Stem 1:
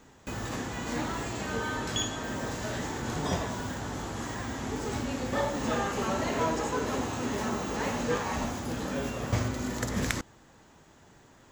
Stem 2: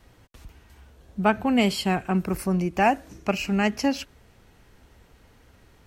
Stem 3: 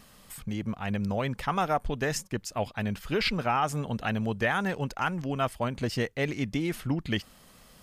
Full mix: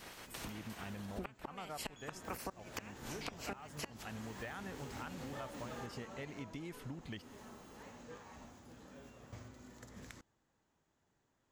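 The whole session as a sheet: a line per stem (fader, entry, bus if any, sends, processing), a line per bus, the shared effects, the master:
1.90 s -21.5 dB -> 2.28 s -11 dB -> 5.80 s -11 dB -> 6.50 s -23 dB, 0.00 s, no send, none
+2.0 dB, 0.00 s, no send, spectral peaks clipped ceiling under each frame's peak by 23 dB; high-pass 50 Hz 6 dB/octave; inverted gate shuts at -14 dBFS, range -27 dB
-11.5 dB, 0.00 s, no send, none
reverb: none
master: compression 6:1, threshold -42 dBFS, peak gain reduction 20.5 dB

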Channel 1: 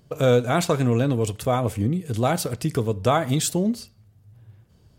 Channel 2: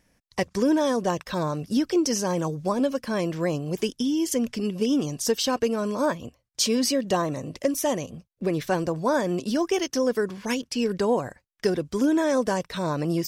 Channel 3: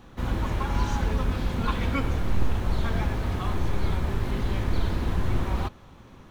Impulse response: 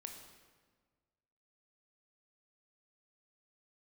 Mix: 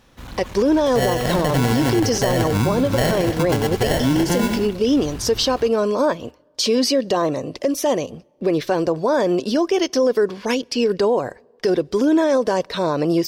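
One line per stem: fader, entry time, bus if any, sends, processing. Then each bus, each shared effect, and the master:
-3.0 dB, 0.75 s, no send, echo send -7.5 dB, level rider gain up to 10.5 dB; sample-and-hold 36×
+1.5 dB, 0.00 s, send -23 dB, no echo send, FFT filter 190 Hz 0 dB, 420 Hz +9 dB, 1.9 kHz +3 dB, 4.5 kHz +7 dB, 7.3 kHz -2 dB
-7.5 dB, 0.00 s, no send, no echo send, treble shelf 2.1 kHz +11.5 dB; one-sided clip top -27 dBFS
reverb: on, RT60 1.5 s, pre-delay 19 ms
echo: feedback delay 96 ms, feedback 38%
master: peak limiter -10 dBFS, peak gain reduction 9 dB

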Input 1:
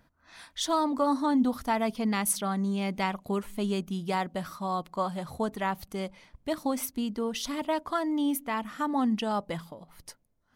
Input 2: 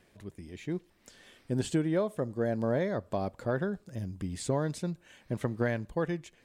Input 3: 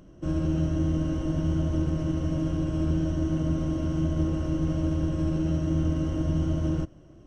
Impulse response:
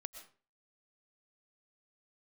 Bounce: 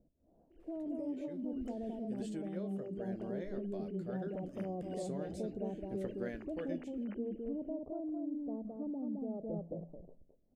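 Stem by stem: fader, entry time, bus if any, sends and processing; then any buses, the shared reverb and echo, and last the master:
-3.5 dB, 0.00 s, bus A, send -11 dB, echo send -7 dB, steep low-pass 660 Hz 36 dB/octave; peak limiter -26 dBFS, peak gain reduction 9 dB
-10.5 dB, 0.60 s, no bus, no send, no echo send, flange 0.56 Hz, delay 9.1 ms, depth 9.5 ms, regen +52%
-16.0 dB, 0.50 s, bus A, no send, no echo send, formants replaced by sine waves; high-pass 370 Hz 6 dB/octave; compressor with a negative ratio -37 dBFS, ratio -1
bus A: 0.0 dB, peak limiter -37.5 dBFS, peak gain reduction 9.5 dB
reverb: on, RT60 0.40 s, pre-delay 80 ms
echo: delay 215 ms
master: fifteen-band graphic EQ 100 Hz -10 dB, 400 Hz +3 dB, 1 kHz -9 dB; gain riding 0.5 s

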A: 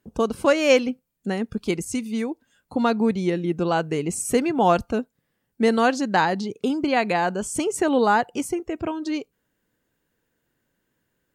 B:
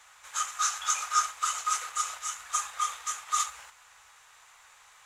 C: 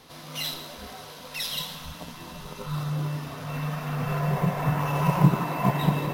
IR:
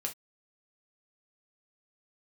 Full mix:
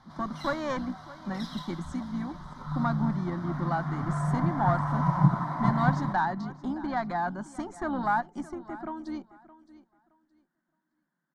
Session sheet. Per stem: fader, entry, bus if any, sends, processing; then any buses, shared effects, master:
-1.5 dB, 0.00 s, no send, echo send -18 dB, octave divider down 2 oct, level +1 dB; elliptic high-pass 160 Hz; valve stage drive 12 dB, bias 0.4
mute
-1.0 dB, 0.00 s, no send, echo send -20 dB, none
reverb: none
echo: feedback delay 618 ms, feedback 21%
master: low-pass 3.2 kHz 12 dB/octave; static phaser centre 1.1 kHz, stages 4; endings held to a fixed fall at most 470 dB/s

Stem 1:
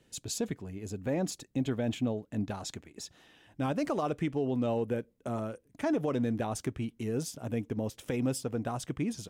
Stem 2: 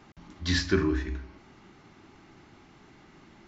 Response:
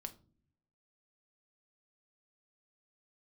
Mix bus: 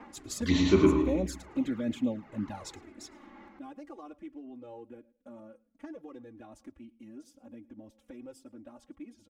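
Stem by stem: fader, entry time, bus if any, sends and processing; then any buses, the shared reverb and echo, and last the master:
3.17 s -3 dB -> 3.52 s -14.5 dB, 0.00 s, send -18.5 dB, echo send -22.5 dB, comb 3.6 ms, depth 93%
+2.5 dB, 0.00 s, send -11.5 dB, echo send -8.5 dB, ten-band graphic EQ 125 Hz +3 dB, 250 Hz +7 dB, 500 Hz +9 dB, 1 kHz +11 dB, 2 kHz +10 dB; rotary cabinet horn 1.1 Hz; auto duck -11 dB, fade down 0.25 s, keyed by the first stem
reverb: on, pre-delay 5 ms
echo: feedback delay 109 ms, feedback 24%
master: touch-sensitive flanger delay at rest 4.7 ms, full sweep at -24 dBFS; tape noise reduction on one side only decoder only

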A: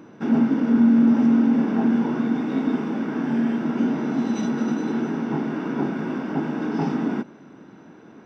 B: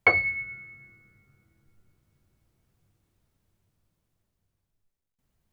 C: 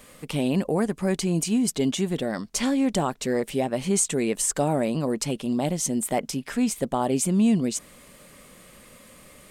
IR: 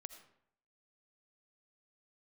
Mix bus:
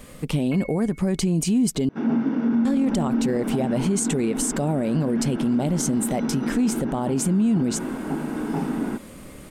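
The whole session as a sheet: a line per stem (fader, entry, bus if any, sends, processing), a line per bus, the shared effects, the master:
-2.0 dB, 1.75 s, no send, treble shelf 4.4 kHz -6 dB
-13.5 dB, 0.45 s, no send, none
+2.0 dB, 0.00 s, muted 1.89–2.65 s, no send, bass shelf 370 Hz +10.5 dB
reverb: none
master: peak limiter -14.5 dBFS, peak gain reduction 11 dB

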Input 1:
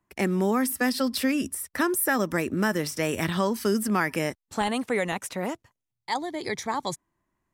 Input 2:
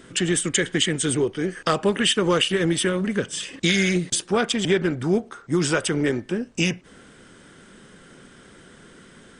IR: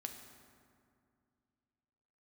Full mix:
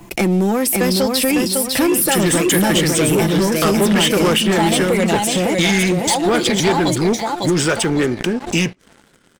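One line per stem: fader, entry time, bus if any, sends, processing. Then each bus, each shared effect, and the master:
+2.5 dB, 0.00 s, no send, echo send -4.5 dB, high-order bell 1.4 kHz -8.5 dB 1.1 oct; comb 5.9 ms, depth 51%; compression 2:1, threshold -28 dBFS, peak gain reduction 5.5 dB
-4.5 dB, 1.95 s, no send, no echo send, none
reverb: none
echo: feedback delay 553 ms, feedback 36%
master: waveshaping leveller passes 3; swell ahead of each attack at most 130 dB/s

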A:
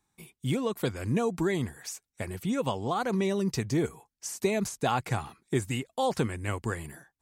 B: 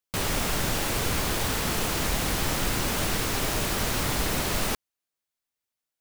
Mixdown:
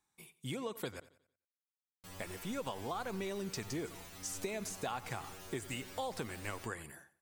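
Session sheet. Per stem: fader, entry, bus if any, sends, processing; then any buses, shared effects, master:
-4.0 dB, 0.00 s, muted 1.00–2.19 s, no send, echo send -19 dB, bass shelf 310 Hz -9.5 dB
-12.0 dB, 1.90 s, no send, no echo send, inharmonic resonator 92 Hz, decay 0.52 s, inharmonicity 0.002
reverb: none
echo: feedback delay 90 ms, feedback 38%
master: compression 4:1, threshold -36 dBFS, peak gain reduction 7 dB

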